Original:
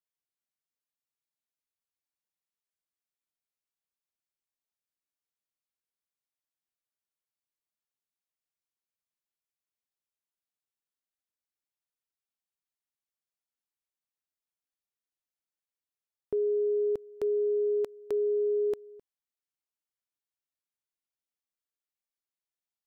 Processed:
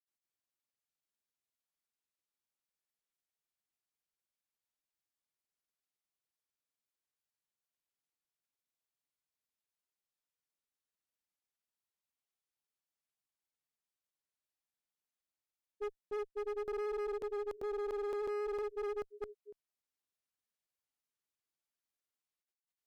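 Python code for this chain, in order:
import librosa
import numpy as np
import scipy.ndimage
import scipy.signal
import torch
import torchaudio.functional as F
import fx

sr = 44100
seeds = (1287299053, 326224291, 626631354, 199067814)

y = fx.granulator(x, sr, seeds[0], grain_ms=100.0, per_s=20.0, spray_ms=576.0, spread_st=0)
y = fx.rider(y, sr, range_db=10, speed_s=2.0)
y = fx.clip_asym(y, sr, top_db=-36.5, bottom_db=-30.0)
y = y * librosa.db_to_amplitude(-3.0)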